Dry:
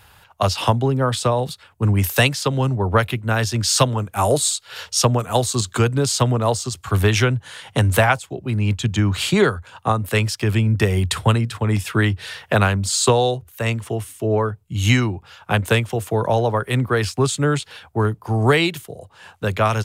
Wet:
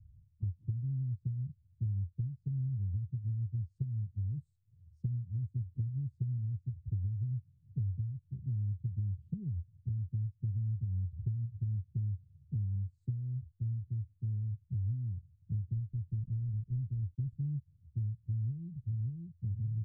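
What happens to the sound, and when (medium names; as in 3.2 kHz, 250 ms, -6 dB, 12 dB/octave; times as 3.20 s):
15.72–17.39 s: block-companded coder 3-bit
18.19–18.73 s: echo throw 580 ms, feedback 50%, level -5 dB
whole clip: inverse Chebyshev low-pass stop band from 610 Hz, stop band 70 dB; compression 6:1, threshold -31 dBFS; trim -2 dB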